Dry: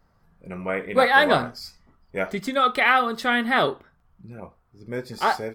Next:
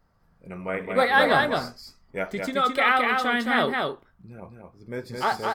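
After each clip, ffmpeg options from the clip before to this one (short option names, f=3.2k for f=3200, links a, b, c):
-af "aecho=1:1:216:0.668,volume=-3dB"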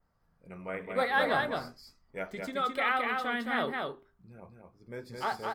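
-af "bandreject=f=50:t=h:w=6,bandreject=f=100:t=h:w=6,bandreject=f=150:t=h:w=6,bandreject=f=200:t=h:w=6,bandreject=f=250:t=h:w=6,bandreject=f=300:t=h:w=6,bandreject=f=350:t=h:w=6,bandreject=f=400:t=h:w=6,adynamicequalizer=threshold=0.00501:dfrequency=6300:dqfactor=1:tfrequency=6300:tqfactor=1:attack=5:release=100:ratio=0.375:range=3:mode=cutabove:tftype=bell,volume=-8dB"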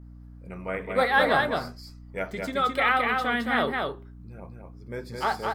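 -af "aeval=exprs='val(0)+0.00316*(sin(2*PI*60*n/s)+sin(2*PI*2*60*n/s)/2+sin(2*PI*3*60*n/s)/3+sin(2*PI*4*60*n/s)/4+sin(2*PI*5*60*n/s)/5)':c=same,volume=6dB"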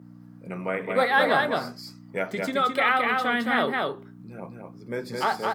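-filter_complex "[0:a]highpass=f=140:w=0.5412,highpass=f=140:w=1.3066,asplit=2[a][b];[b]acompressor=threshold=-33dB:ratio=6,volume=2.5dB[c];[a][c]amix=inputs=2:normalize=0,volume=-1.5dB"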